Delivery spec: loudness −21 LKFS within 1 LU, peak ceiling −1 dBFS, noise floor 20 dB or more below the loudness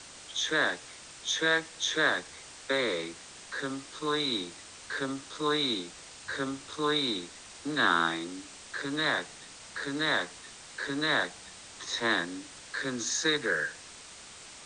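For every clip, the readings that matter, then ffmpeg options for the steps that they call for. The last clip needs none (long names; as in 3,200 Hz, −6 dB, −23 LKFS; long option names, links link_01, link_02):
background noise floor −49 dBFS; target noise floor −51 dBFS; integrated loudness −30.5 LKFS; sample peak −11.0 dBFS; target loudness −21.0 LKFS
→ -af "afftdn=noise_reduction=6:noise_floor=-49"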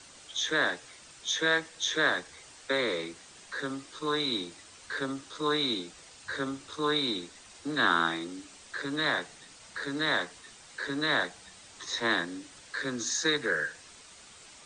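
background noise floor −53 dBFS; integrated loudness −30.5 LKFS; sample peak −11.0 dBFS; target loudness −21.0 LKFS
→ -af "volume=9.5dB"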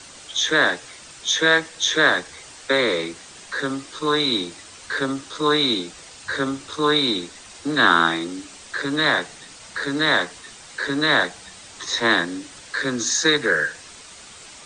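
integrated loudness −21.0 LKFS; sample peak −1.5 dBFS; background noise floor −43 dBFS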